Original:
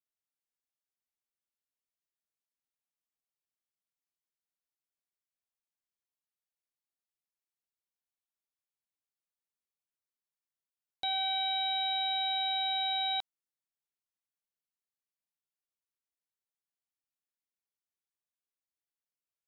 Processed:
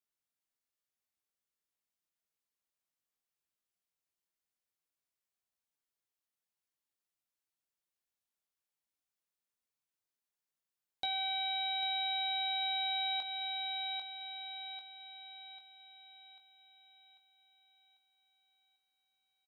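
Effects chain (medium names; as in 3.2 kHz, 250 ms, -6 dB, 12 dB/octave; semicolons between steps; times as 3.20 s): doubling 20 ms -7 dB; thinning echo 794 ms, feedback 49%, high-pass 350 Hz, level -10 dB; compression, threshold -32 dBFS, peak gain reduction 5.5 dB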